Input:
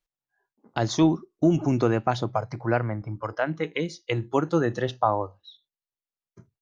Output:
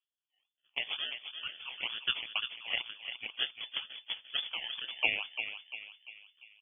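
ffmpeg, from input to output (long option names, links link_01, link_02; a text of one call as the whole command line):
ffmpeg -i in.wav -filter_complex "[0:a]highpass=frequency=700:width=0.5412,highpass=frequency=700:width=1.3066,acrusher=samples=28:mix=1:aa=0.000001:lfo=1:lforange=16.8:lforate=2.1,asplit=2[link_01][link_02];[link_02]adelay=346,lowpass=frequency=2100:poles=1,volume=-7dB,asplit=2[link_03][link_04];[link_04]adelay=346,lowpass=frequency=2100:poles=1,volume=0.51,asplit=2[link_05][link_06];[link_06]adelay=346,lowpass=frequency=2100:poles=1,volume=0.51,asplit=2[link_07][link_08];[link_08]adelay=346,lowpass=frequency=2100:poles=1,volume=0.51,asplit=2[link_09][link_10];[link_10]adelay=346,lowpass=frequency=2100:poles=1,volume=0.51,asplit=2[link_11][link_12];[link_12]adelay=346,lowpass=frequency=2100:poles=1,volume=0.51[link_13];[link_03][link_05][link_07][link_09][link_11][link_13]amix=inputs=6:normalize=0[link_14];[link_01][link_14]amix=inputs=2:normalize=0,lowpass=frequency=3000:width_type=q:width=0.5098,lowpass=frequency=3000:width_type=q:width=0.6013,lowpass=frequency=3000:width_type=q:width=0.9,lowpass=frequency=3000:width_type=q:width=2.563,afreqshift=-3500,volume=-5dB" out.wav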